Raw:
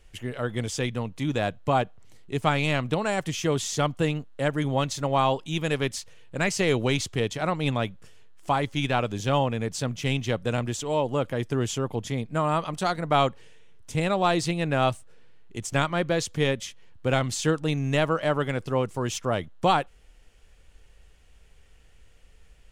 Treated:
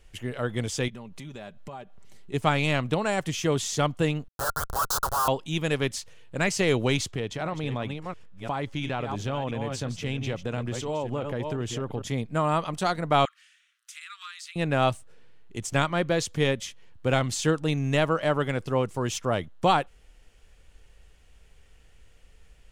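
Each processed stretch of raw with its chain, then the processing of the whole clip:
0.88–2.34 comb 5.1 ms, depth 49% + compressor, threshold -38 dBFS
4.28–5.28 HPF 880 Hz 24 dB/oct + Schmitt trigger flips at -36 dBFS + EQ curve 130 Hz 0 dB, 260 Hz -11 dB, 450 Hz +2 dB, 800 Hz +5 dB, 1400 Hz +12 dB, 2200 Hz -19 dB, 4100 Hz +2 dB, 12000 Hz +11 dB
7.11–12.02 reverse delay 0.343 s, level -9 dB + high shelf 6200 Hz -9.5 dB + compressor 4:1, threshold -26 dBFS
13.25–14.56 steep high-pass 1200 Hz 72 dB/oct + compressor 4:1, threshold -40 dBFS
whole clip: dry

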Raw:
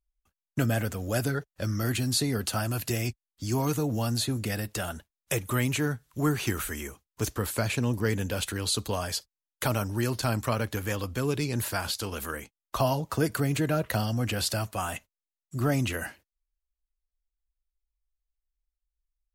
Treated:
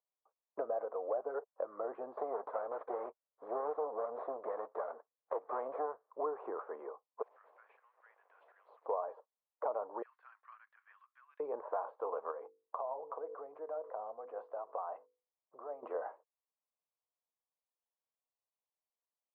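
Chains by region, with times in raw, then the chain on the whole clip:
2.17–6.1 minimum comb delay 0.54 ms + careless resampling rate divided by 3×, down none, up filtered
7.22–8.86 switching spikes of -20.5 dBFS + steep high-pass 1800 Hz
10.02–11.4 steep high-pass 1800 Hz + high shelf 12000 Hz -9 dB
12.31–15.83 notches 50/100/150/200/250/300/350/400/450/500 Hz + compressor 10:1, threshold -37 dBFS
whole clip: de-esser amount 80%; elliptic band-pass 460–1100 Hz, stop band 80 dB; compressor 3:1, threshold -41 dBFS; gain +6 dB

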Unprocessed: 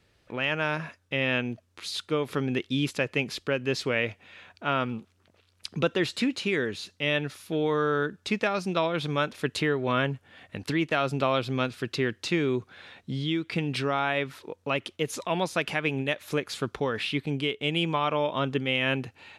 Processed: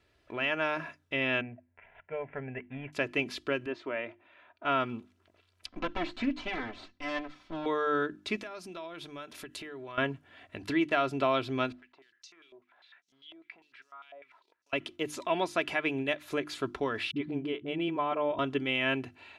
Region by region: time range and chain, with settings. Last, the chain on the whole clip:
1.41–2.93 switching dead time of 0.1 ms + inverse Chebyshev low-pass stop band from 4500 Hz + fixed phaser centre 1200 Hz, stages 6
3.66–4.65 LPF 1100 Hz + tilt +4 dB/oct + comb 3.3 ms, depth 36%
5.66–7.66 minimum comb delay 3.9 ms + air absorption 160 m + notch 460 Hz, Q 6.9
8.36–9.98 compressor, threshold -37 dBFS + high shelf 6100 Hz +11.5 dB
11.72–14.73 compressor 12:1, threshold -34 dBFS + companded quantiser 6-bit + stepped band-pass 10 Hz 630–5800 Hz
17.11–18.39 LPF 1200 Hz 6 dB/oct + dispersion highs, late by 52 ms, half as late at 310 Hz
whole clip: tone controls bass -2 dB, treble -6 dB; notches 50/100/150/200/250/300/350 Hz; comb 3 ms, depth 53%; gain -3 dB

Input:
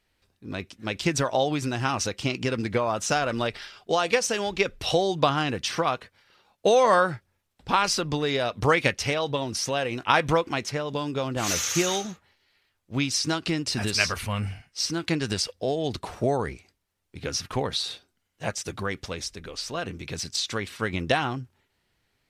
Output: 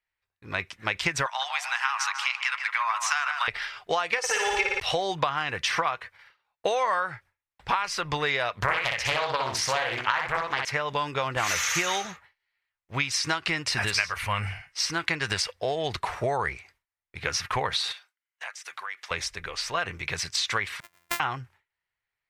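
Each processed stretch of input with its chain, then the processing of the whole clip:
1.26–3.48 steep high-pass 930 Hz + tape echo 0.15 s, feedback 55%, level -7 dB, low-pass 2000 Hz
4.18–4.8 comb 2.3 ms, depth 86% + flutter echo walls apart 9.7 m, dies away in 1.3 s
8.55–10.65 feedback echo 61 ms, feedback 25%, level -4.5 dB + Doppler distortion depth 0.87 ms
17.92–19.11 HPF 1000 Hz + compressor, threshold -41 dBFS
20.8–21.2 sample sorter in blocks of 128 samples + gate -23 dBFS, range -29 dB + pre-emphasis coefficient 0.8
whole clip: gate with hold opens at -49 dBFS; graphic EQ 250/1000/2000 Hz -11/+7/+11 dB; compressor 12:1, threshold -22 dBFS

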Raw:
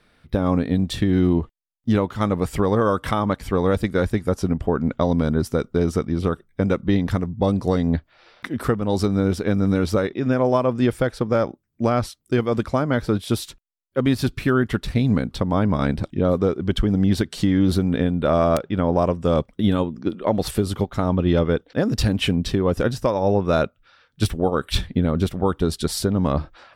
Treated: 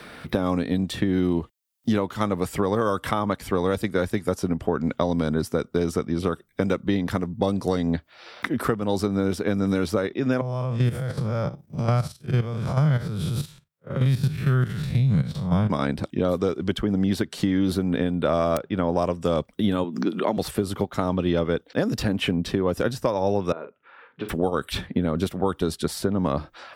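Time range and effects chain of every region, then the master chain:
10.41–15.7 time blur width 0.115 s + resonant low shelf 200 Hz +10.5 dB, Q 3 + level quantiser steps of 12 dB
19.84–20.37 HPF 170 Hz 24 dB/oct + bell 520 Hz -7 dB 0.25 oct + backwards sustainer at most 86 dB/s
23.52–24.29 compressor, threshold -30 dBFS + speaker cabinet 260–2200 Hz, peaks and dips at 430 Hz +7 dB, 640 Hz -5 dB, 950 Hz +5 dB, 1500 Hz -3 dB + doubler 43 ms -9 dB
whole clip: HPF 170 Hz 6 dB/oct; high shelf 10000 Hz +6 dB; three-band squash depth 70%; gain -2 dB

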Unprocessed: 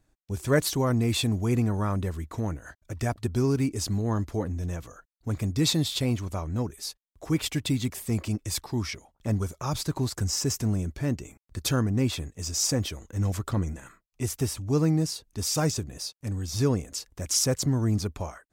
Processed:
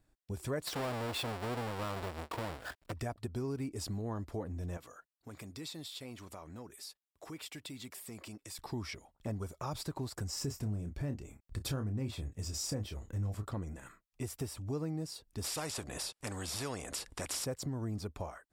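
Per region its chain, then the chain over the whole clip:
0.67–2.92 half-waves squared off + overdrive pedal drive 8 dB, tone 7200 Hz, clips at -14.5 dBFS
4.77–8.59 HPF 440 Hz 6 dB/oct + compressor 3:1, threshold -41 dBFS
10.35–13.47 low shelf 160 Hz +9 dB + doubler 29 ms -8.5 dB
15.44–17.45 LPF 11000 Hz 24 dB/oct + spectral compressor 2:1
whole clip: notch 6300 Hz, Q 7.6; dynamic EQ 660 Hz, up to +5 dB, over -42 dBFS, Q 0.73; compressor 3:1, threshold -34 dBFS; gain -4 dB

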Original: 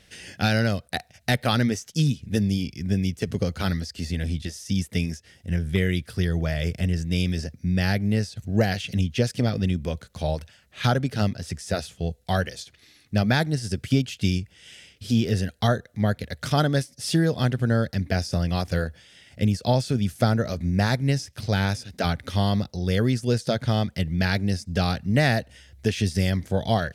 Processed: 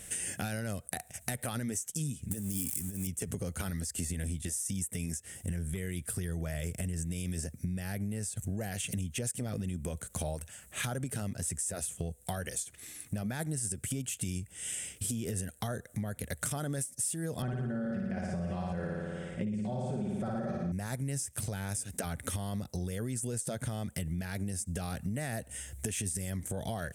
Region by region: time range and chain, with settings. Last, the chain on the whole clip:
2.31–3.07 switching spikes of -26 dBFS + bell 270 Hz +3.5 dB 0.35 oct + negative-ratio compressor -26 dBFS, ratio -0.5
17.42–20.72 tape spacing loss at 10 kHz 29 dB + comb 5.3 ms, depth 69% + flutter echo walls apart 9.7 m, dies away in 1.2 s
whole clip: limiter -19 dBFS; resonant high shelf 6300 Hz +11.5 dB, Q 3; compressor 6:1, threshold -37 dBFS; gain +4 dB

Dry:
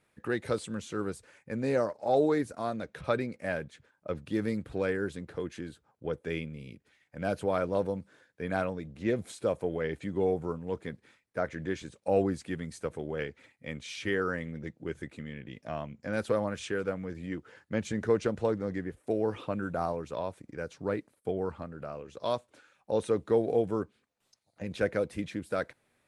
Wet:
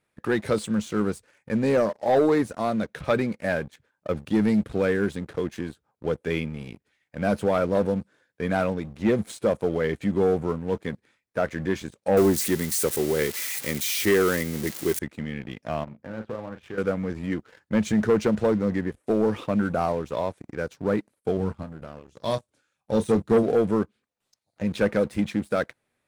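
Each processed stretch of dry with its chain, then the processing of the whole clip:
12.17–14.99 switching spikes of -28 dBFS + small resonant body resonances 370/2000 Hz, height 8 dB, ringing for 30 ms
15.84–16.78 LPF 1500 Hz + compressor 2:1, threshold -48 dBFS + doubler 36 ms -7 dB
21.37–23.43 tone controls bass +9 dB, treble +8 dB + doubler 31 ms -10 dB + upward expander, over -38 dBFS
whole clip: dynamic EQ 210 Hz, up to +8 dB, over -52 dBFS, Q 7.3; sample leveller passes 2

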